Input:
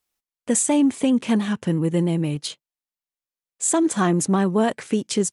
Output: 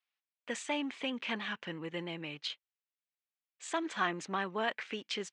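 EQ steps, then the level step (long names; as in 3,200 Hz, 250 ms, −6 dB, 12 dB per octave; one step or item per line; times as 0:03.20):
resonant band-pass 2,500 Hz, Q 1.1
high-frequency loss of the air 140 metres
0.0 dB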